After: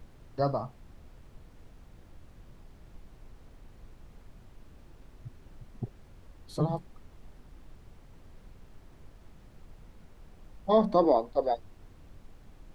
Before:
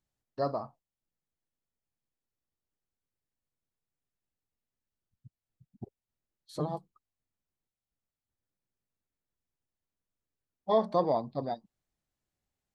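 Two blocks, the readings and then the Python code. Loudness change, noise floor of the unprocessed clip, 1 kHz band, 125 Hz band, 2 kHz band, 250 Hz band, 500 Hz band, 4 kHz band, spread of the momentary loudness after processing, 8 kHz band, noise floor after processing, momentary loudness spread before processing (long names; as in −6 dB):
+3.0 dB, below −85 dBFS, +3.0 dB, +6.5 dB, can't be measured, +6.0 dB, +4.0 dB, +2.0 dB, 19 LU, +3.5 dB, −55 dBFS, 22 LU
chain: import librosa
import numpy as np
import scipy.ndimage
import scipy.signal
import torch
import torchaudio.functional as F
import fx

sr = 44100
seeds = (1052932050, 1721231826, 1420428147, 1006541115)

y = fx.filter_sweep_highpass(x, sr, from_hz=110.0, to_hz=460.0, start_s=10.63, end_s=11.27, q=2.7)
y = fx.dmg_noise_colour(y, sr, seeds[0], colour='brown', level_db=-51.0)
y = F.gain(torch.from_numpy(y), 2.0).numpy()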